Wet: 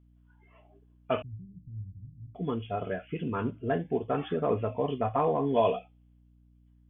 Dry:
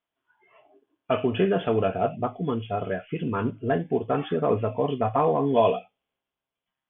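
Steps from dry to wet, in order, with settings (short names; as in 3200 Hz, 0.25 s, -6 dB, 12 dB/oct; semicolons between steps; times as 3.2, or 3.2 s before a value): 1.22–2.35 inverse Chebyshev band-stop 590–3200 Hz, stop band 80 dB; hum 60 Hz, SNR 28 dB; gain -4.5 dB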